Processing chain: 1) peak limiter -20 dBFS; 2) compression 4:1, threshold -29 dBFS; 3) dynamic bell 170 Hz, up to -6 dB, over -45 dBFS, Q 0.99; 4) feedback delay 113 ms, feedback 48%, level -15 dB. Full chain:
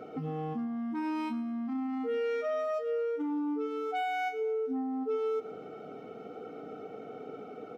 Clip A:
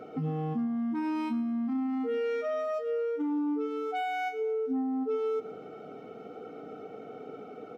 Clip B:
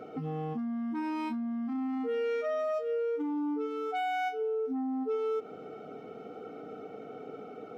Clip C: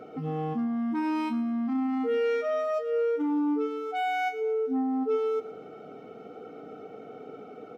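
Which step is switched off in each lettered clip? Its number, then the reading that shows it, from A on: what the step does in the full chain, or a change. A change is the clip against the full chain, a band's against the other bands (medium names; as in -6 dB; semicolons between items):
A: 3, 250 Hz band +3.0 dB; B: 4, echo-to-direct -14.0 dB to none; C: 2, mean gain reduction 3.0 dB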